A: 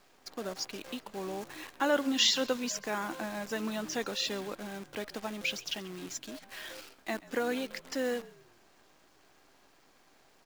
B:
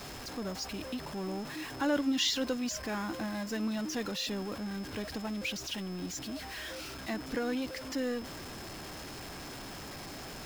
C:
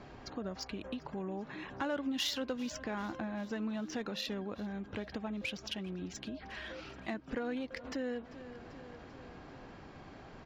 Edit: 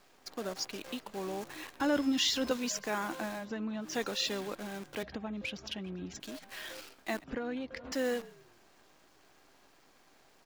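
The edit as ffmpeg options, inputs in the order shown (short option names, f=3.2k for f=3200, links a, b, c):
-filter_complex "[2:a]asplit=3[a][b][c];[0:a]asplit=5[d][e][f][g][h];[d]atrim=end=1.802[i];[1:a]atrim=start=1.798:end=2.512[j];[e]atrim=start=2.508:end=3.48[k];[a]atrim=start=3.32:end=3.96[l];[f]atrim=start=3.8:end=5.032[m];[b]atrim=start=5.028:end=6.202[n];[g]atrim=start=6.198:end=7.242[o];[c]atrim=start=7.238:end=7.922[p];[h]atrim=start=7.918[q];[i][j]acrossfade=d=0.004:c1=hsin:c2=hsin[r];[r][k]acrossfade=d=0.004:c1=hsin:c2=hsin[s];[s][l]acrossfade=d=0.16:c1=tri:c2=tri[t];[t][m]acrossfade=d=0.16:c1=tri:c2=tri[u];[u][n]acrossfade=d=0.004:c1=hsin:c2=hsin[v];[v][o]acrossfade=d=0.004:c1=hsin:c2=hsin[w];[w][p]acrossfade=d=0.004:c1=hsin:c2=hsin[x];[x][q]acrossfade=d=0.004:c1=hsin:c2=hsin"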